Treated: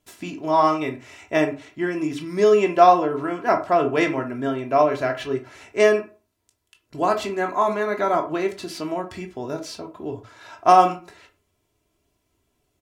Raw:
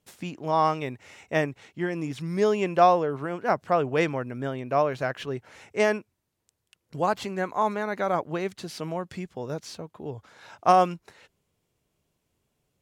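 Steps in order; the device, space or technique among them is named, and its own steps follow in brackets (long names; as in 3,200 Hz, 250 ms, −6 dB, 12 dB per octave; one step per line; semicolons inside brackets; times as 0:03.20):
microphone above a desk (comb filter 3 ms, depth 58%; convolution reverb RT60 0.35 s, pre-delay 14 ms, DRR 5 dB)
level +2.5 dB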